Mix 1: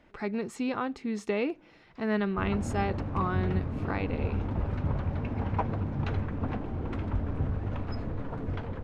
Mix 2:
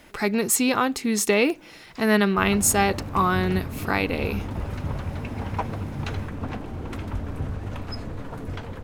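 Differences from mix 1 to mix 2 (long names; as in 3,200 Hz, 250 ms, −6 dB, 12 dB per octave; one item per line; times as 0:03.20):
speech +7.5 dB
master: remove head-to-tape spacing loss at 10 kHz 25 dB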